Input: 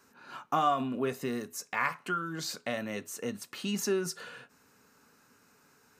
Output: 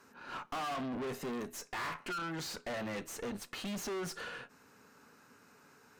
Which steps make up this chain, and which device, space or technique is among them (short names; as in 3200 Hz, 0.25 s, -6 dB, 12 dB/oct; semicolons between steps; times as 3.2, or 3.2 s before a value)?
2.73–3.13 comb 6 ms, depth 40%; tube preamp driven hard (tube stage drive 43 dB, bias 0.7; low shelf 150 Hz -4 dB; high shelf 4500 Hz -7.5 dB); gain +7.5 dB